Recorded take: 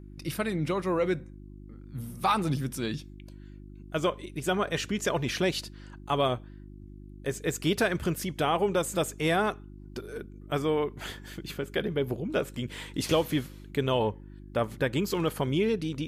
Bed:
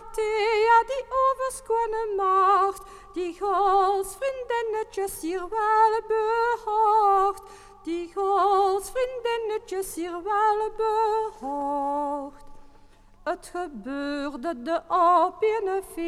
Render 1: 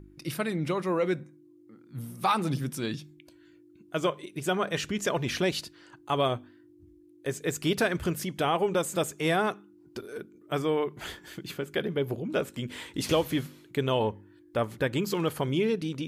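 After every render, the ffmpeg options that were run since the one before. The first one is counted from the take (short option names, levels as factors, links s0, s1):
-af "bandreject=f=50:t=h:w=4,bandreject=f=100:t=h:w=4,bandreject=f=150:t=h:w=4,bandreject=f=200:t=h:w=4,bandreject=f=250:t=h:w=4"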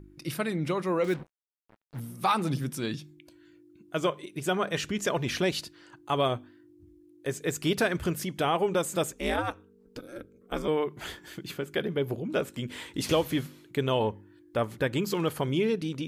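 -filter_complex "[0:a]asettb=1/sr,asplit=3[s0][s1][s2];[s0]atrim=end=1.044[s3];[s1]atrim=start=1.04:end=2,asetpts=PTS-STARTPTS,afade=t=in:d=0.004:c=qsin,afade=t=out:st=0.956:d=0.004:c=qsin,acrusher=bits=6:mix=0:aa=0.5[s4];[s2]atrim=start=1.996[s5];[s3][s4]acrossfade=d=0.004:c1=hsin:c2=qsin[s6];[s6][s5]acrossfade=d=0.004:c1=qsin:c2=hsin,asettb=1/sr,asplit=3[s7][s8][s9];[s7]atrim=end=9.124[s10];[s8]atrim=start=9.12:end=10.68,asetpts=PTS-STARTPTS,afade=t=in:d=0.004:c=qsin,afade=t=out:st=1.556:d=0.004:c=qsin,aeval=exprs='val(0)*sin(2*PI*110*n/s)':c=same[s11];[s9]atrim=start=10.676[s12];[s10][s11]acrossfade=d=0.004:c1=hsin:c2=qsin[s13];[s13][s12]acrossfade=d=0.004:c1=qsin:c2=hsin"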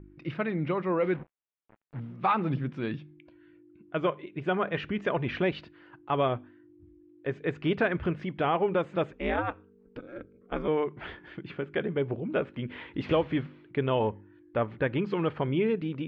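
-af "lowpass=f=2700:w=0.5412,lowpass=f=2700:w=1.3066"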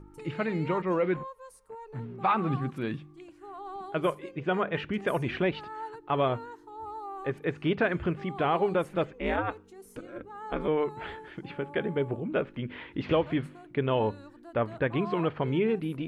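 -filter_complex "[1:a]volume=0.1[s0];[0:a][s0]amix=inputs=2:normalize=0"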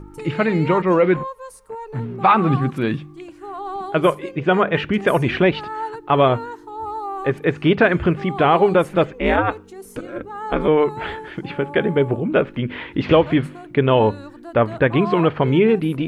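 -af "volume=3.76"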